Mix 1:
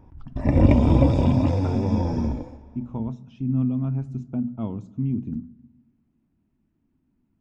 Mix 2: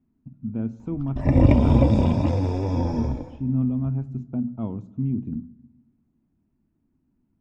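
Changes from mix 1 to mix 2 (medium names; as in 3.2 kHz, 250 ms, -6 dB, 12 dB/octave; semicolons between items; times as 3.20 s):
speech: add treble shelf 2.8 kHz -11.5 dB; background: entry +0.80 s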